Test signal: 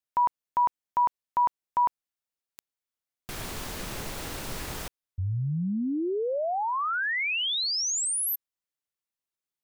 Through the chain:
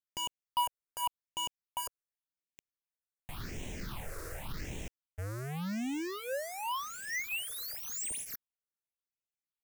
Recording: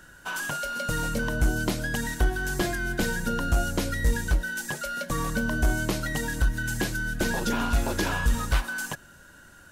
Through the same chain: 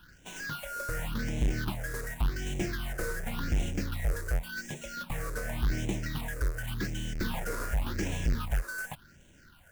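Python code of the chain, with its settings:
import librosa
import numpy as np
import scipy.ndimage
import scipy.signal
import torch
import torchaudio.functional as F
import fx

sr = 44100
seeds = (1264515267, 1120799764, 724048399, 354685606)

y = fx.halfwave_hold(x, sr)
y = fx.phaser_stages(y, sr, stages=6, low_hz=210.0, high_hz=1300.0, hz=0.89, feedback_pct=25)
y = y * librosa.db_to_amplitude(-9.0)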